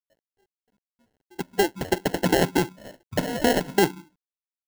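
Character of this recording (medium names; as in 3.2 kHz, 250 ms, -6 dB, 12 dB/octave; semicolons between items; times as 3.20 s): a quantiser's noise floor 12-bit, dither none; random-step tremolo; aliases and images of a low sample rate 1.2 kHz, jitter 0%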